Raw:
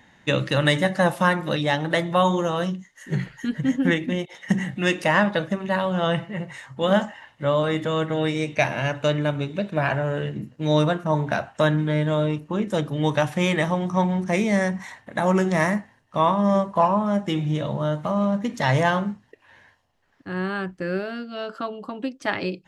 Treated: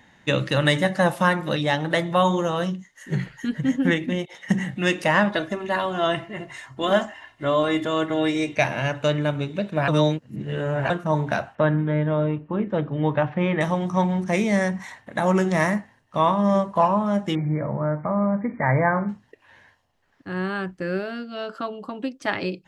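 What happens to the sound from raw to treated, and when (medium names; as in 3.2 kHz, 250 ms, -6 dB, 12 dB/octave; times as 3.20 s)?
5.32–8.56 s: comb 2.9 ms
9.88–10.90 s: reverse
11.55–13.61 s: Bessel low-pass 1.9 kHz, order 4
17.35–19.09 s: brick-wall FIR low-pass 2.4 kHz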